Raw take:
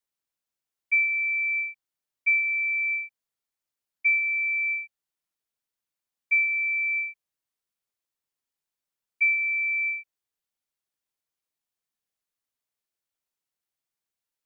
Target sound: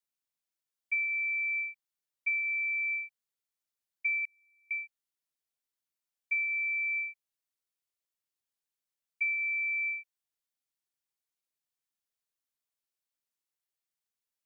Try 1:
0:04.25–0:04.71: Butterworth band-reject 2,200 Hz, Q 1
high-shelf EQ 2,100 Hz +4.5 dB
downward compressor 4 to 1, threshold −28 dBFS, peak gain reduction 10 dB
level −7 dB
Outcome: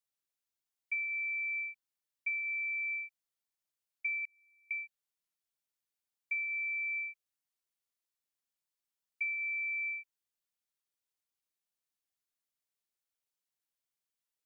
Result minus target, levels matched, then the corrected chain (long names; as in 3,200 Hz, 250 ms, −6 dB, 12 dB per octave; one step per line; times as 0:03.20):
downward compressor: peak gain reduction +5 dB
0:04.25–0:04.71: Butterworth band-reject 2,200 Hz, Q 1
high-shelf EQ 2,100 Hz +4.5 dB
downward compressor 4 to 1, threshold −21.5 dBFS, peak gain reduction 5 dB
level −7 dB